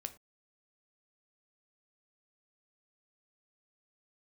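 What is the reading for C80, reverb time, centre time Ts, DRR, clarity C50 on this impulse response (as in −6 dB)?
21.0 dB, non-exponential decay, 6 ms, 8.5 dB, 15.5 dB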